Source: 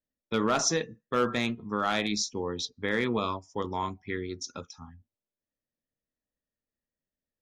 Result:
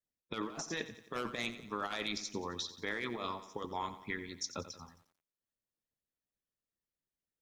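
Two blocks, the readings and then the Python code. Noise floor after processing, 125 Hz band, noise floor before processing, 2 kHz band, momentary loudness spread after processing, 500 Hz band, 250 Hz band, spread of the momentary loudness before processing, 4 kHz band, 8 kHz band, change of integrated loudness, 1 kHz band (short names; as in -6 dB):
under -85 dBFS, -11.5 dB, under -85 dBFS, -7.0 dB, 6 LU, -11.5 dB, -11.0 dB, 11 LU, -7.0 dB, -11.5 dB, -9.5 dB, -9.0 dB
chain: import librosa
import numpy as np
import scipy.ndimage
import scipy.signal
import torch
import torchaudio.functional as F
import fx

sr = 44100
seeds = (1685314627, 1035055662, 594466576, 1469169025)

y = fx.hpss(x, sr, part='harmonic', gain_db=-14)
y = fx.over_compress(y, sr, threshold_db=-35.0, ratio=-0.5)
y = fx.echo_crushed(y, sr, ms=89, feedback_pct=55, bits=10, wet_db=-13)
y = y * librosa.db_to_amplitude(-3.0)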